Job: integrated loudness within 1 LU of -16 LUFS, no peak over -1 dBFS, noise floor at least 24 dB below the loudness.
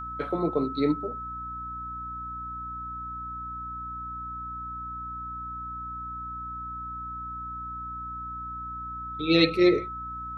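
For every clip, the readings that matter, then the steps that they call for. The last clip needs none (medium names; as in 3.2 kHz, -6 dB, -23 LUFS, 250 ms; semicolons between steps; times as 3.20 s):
hum 60 Hz; highest harmonic 300 Hz; hum level -41 dBFS; steady tone 1.3 kHz; tone level -34 dBFS; loudness -30.5 LUFS; peak level -8.5 dBFS; loudness target -16.0 LUFS
-> de-hum 60 Hz, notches 5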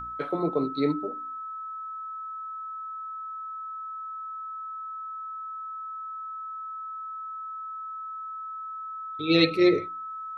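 hum not found; steady tone 1.3 kHz; tone level -34 dBFS
-> band-stop 1.3 kHz, Q 30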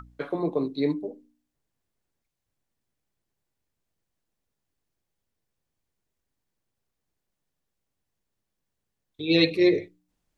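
steady tone not found; loudness -25.0 LUFS; peak level -9.0 dBFS; loudness target -16.0 LUFS
-> trim +9 dB; peak limiter -1 dBFS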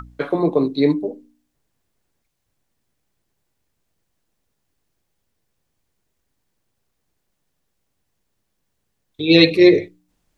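loudness -16.0 LUFS; peak level -1.0 dBFS; noise floor -74 dBFS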